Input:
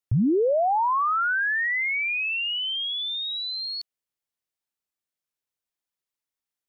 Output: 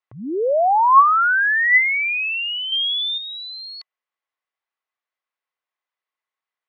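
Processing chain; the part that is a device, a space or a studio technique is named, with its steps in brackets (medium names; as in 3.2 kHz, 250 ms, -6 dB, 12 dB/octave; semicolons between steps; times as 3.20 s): 2.72–3.18 s: peaking EQ 2.6 kHz +7 dB 3 oct; tin-can telephone (band-pass 620–2400 Hz; small resonant body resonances 1.1/2 kHz, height 9 dB, ringing for 45 ms); trim +7.5 dB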